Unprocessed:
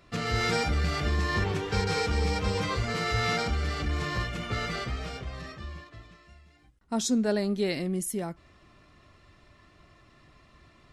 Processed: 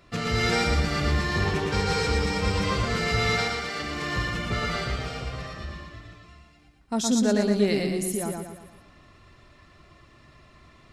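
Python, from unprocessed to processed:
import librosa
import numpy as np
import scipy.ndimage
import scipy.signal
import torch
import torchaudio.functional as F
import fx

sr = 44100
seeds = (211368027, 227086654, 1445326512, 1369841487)

y = fx.highpass(x, sr, hz=fx.line((3.35, 760.0), (4.15, 210.0)), slope=6, at=(3.35, 4.15), fade=0.02)
y = fx.echo_feedback(y, sr, ms=116, feedback_pct=47, wet_db=-3.5)
y = y * 10.0 ** (2.0 / 20.0)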